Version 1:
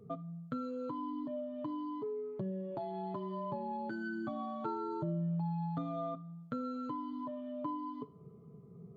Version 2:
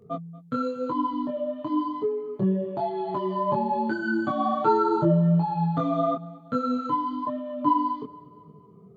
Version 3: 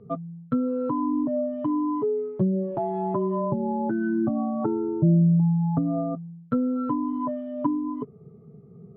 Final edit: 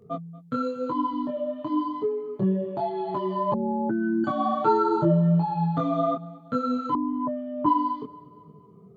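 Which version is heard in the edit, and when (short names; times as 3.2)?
2
3.54–4.24 from 3
6.95–7.66 from 3
not used: 1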